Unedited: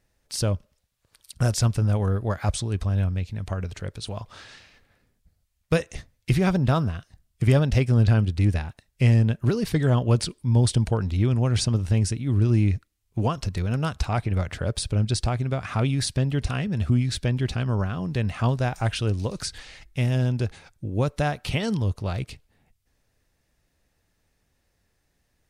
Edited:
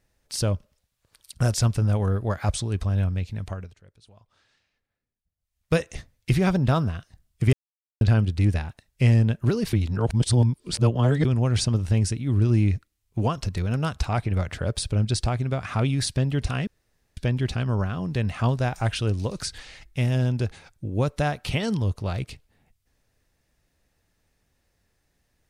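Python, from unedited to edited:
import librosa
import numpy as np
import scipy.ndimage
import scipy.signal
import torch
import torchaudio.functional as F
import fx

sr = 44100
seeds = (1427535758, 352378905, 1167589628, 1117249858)

y = fx.edit(x, sr, fx.fade_down_up(start_s=3.39, length_s=2.35, db=-21.0, fade_s=0.37),
    fx.silence(start_s=7.53, length_s=0.48),
    fx.reverse_span(start_s=9.73, length_s=1.52),
    fx.room_tone_fill(start_s=16.67, length_s=0.5), tone=tone)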